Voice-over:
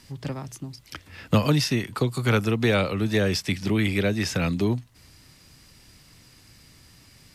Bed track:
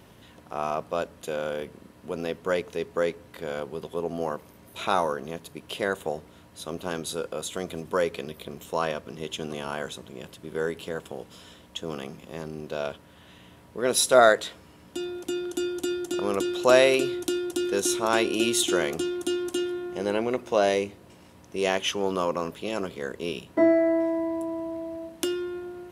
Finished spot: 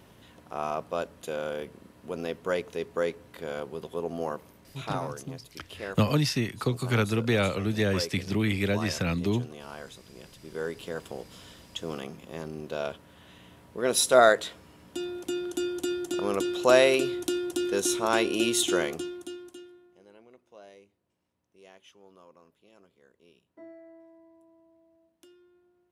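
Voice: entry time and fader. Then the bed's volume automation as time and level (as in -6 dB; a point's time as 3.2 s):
4.65 s, -3.5 dB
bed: 4.48 s -2.5 dB
4.94 s -10 dB
9.95 s -10 dB
11.07 s -1.5 dB
18.8 s -1.5 dB
20.06 s -28.5 dB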